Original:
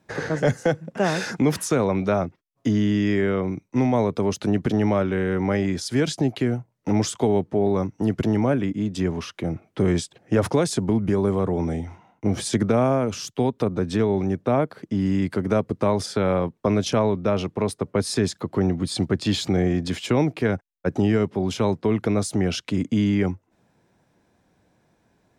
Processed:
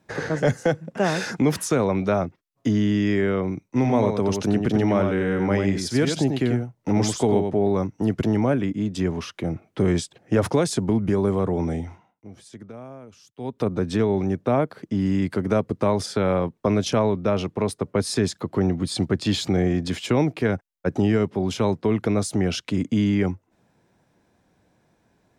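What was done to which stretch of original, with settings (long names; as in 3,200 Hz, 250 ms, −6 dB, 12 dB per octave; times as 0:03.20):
0:03.69–0:07.59: single-tap delay 92 ms −5.5 dB
0:11.87–0:13.67: duck −20 dB, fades 0.30 s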